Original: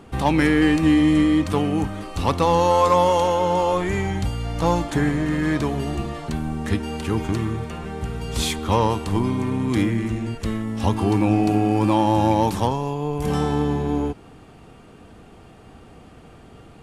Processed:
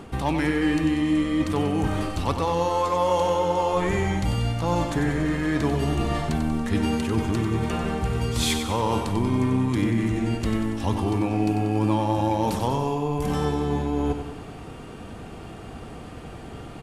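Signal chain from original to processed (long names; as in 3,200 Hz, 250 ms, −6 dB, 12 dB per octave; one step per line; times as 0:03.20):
reversed playback
downward compressor 6 to 1, threshold −27 dBFS, peak gain reduction 14 dB
reversed playback
repeating echo 94 ms, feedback 55%, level −8 dB
level +6 dB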